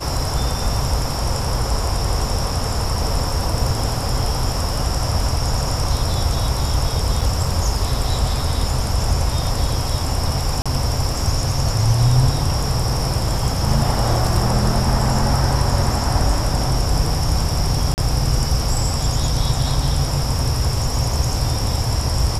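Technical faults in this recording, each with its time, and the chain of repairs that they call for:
0:07.21: drop-out 4.8 ms
0:10.62–0:10.66: drop-out 36 ms
0:17.94–0:17.98: drop-out 39 ms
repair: repair the gap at 0:07.21, 4.8 ms
repair the gap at 0:10.62, 36 ms
repair the gap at 0:17.94, 39 ms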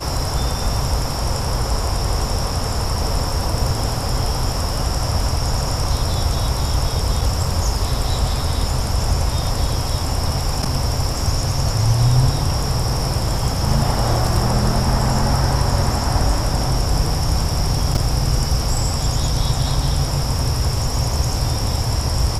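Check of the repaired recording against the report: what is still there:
none of them is left

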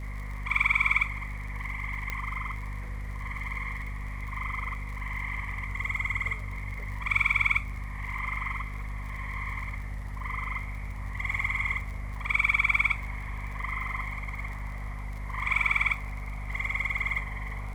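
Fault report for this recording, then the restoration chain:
surface crackle 58 per second −39 dBFS
mains hum 50 Hz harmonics 5 −36 dBFS
0:02.10: click −17 dBFS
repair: click removal
hum removal 50 Hz, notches 5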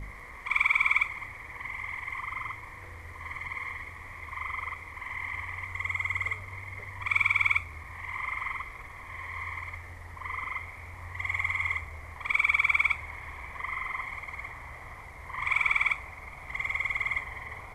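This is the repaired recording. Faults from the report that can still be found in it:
0:02.10: click

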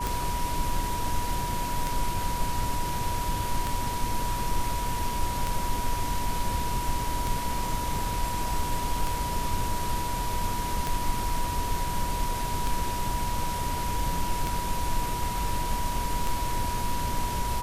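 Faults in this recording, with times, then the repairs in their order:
scratch tick 33 1/3 rpm
whistle 970 Hz −31 dBFS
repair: click removal
notch filter 970 Hz, Q 30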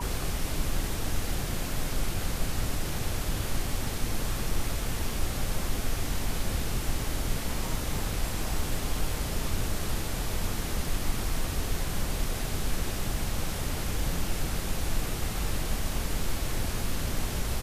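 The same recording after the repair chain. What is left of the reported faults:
none of them is left

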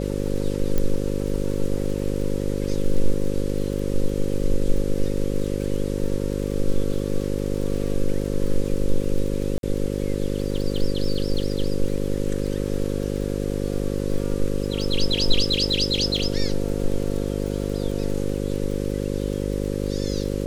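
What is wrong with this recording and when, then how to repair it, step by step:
mains buzz 50 Hz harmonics 11 −26 dBFS
surface crackle 46 per second −30 dBFS
0:00.78: click −10 dBFS
0:09.58–0:09.63: drop-out 52 ms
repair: click removal
hum removal 50 Hz, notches 11
repair the gap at 0:09.58, 52 ms

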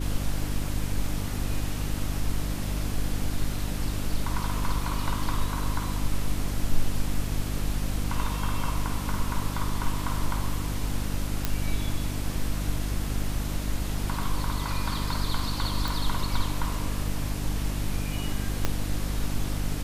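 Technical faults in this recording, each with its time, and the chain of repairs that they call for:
mains hum 50 Hz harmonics 6 −31 dBFS
0:11.45: click −9 dBFS
0:15.88: click
0:18.65: click −10 dBFS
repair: click removal
hum removal 50 Hz, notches 6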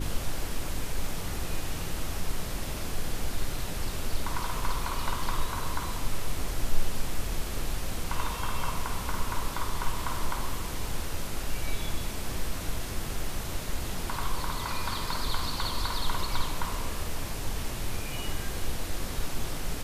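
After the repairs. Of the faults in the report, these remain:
0:18.65: click

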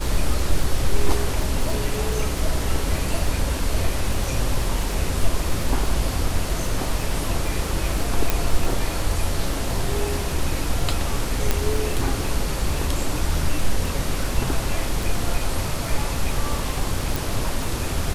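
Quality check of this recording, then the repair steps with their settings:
surface crackle 34 per second −26 dBFS
0:08.30: click
0:11.51: click −4 dBFS
0:17.16: click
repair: click removal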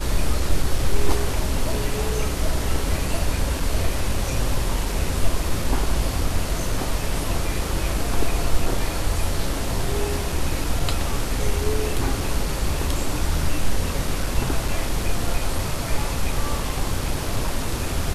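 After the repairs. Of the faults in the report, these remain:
0:17.16: click

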